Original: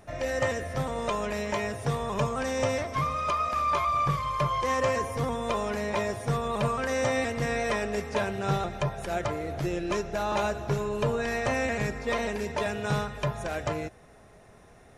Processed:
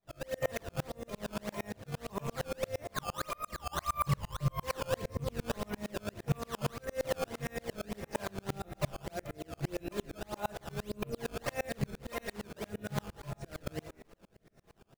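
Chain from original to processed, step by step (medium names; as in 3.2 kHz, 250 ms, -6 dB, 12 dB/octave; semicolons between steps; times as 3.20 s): rattle on loud lows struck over -29 dBFS, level -30 dBFS; treble shelf 11 kHz +9.5 dB; frequency-shifting echo 188 ms, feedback 57%, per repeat -68 Hz, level -16 dB; rotary cabinet horn 1.2 Hz; 3.47–5.83 s: bass shelf 230 Hz +7 dB; decimation with a swept rate 13×, swing 160% 1.7 Hz; reverberation RT60 0.50 s, pre-delay 5 ms, DRR 8 dB; sawtooth tremolo in dB swelling 8.7 Hz, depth 35 dB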